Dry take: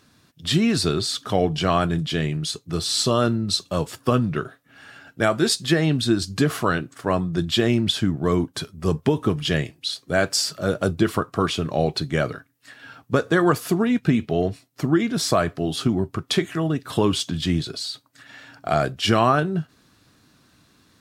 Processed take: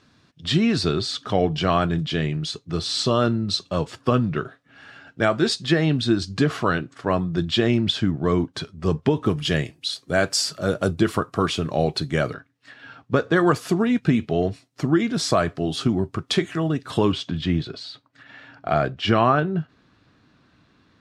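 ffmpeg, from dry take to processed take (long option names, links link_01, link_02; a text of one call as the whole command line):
ffmpeg -i in.wav -af "asetnsamples=nb_out_samples=441:pad=0,asendcmd='9.26 lowpass f 11000;12.34 lowpass f 4500;13.36 lowpass f 8000;17.12 lowpass f 3200',lowpass=5300" out.wav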